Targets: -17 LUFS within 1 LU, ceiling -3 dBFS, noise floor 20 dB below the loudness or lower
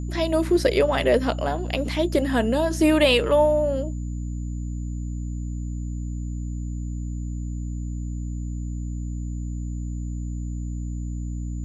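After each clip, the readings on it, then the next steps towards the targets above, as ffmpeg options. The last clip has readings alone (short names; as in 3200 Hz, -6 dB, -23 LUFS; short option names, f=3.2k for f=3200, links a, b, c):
hum 60 Hz; harmonics up to 300 Hz; hum level -27 dBFS; steady tone 7000 Hz; tone level -53 dBFS; loudness -25.5 LUFS; peak -7.0 dBFS; loudness target -17.0 LUFS
-> -af "bandreject=f=60:t=h:w=4,bandreject=f=120:t=h:w=4,bandreject=f=180:t=h:w=4,bandreject=f=240:t=h:w=4,bandreject=f=300:t=h:w=4"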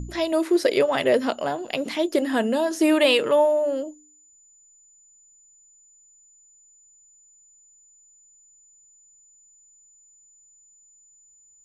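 hum none; steady tone 7000 Hz; tone level -53 dBFS
-> -af "bandreject=f=7k:w=30"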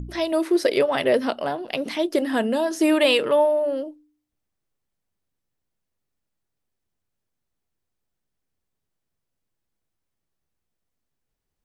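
steady tone none; loudness -22.0 LUFS; peak -7.0 dBFS; loudness target -17.0 LUFS
-> -af "volume=5dB,alimiter=limit=-3dB:level=0:latency=1"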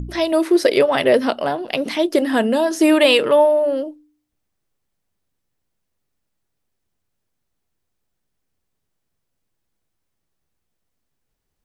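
loudness -17.0 LUFS; peak -3.0 dBFS; noise floor -75 dBFS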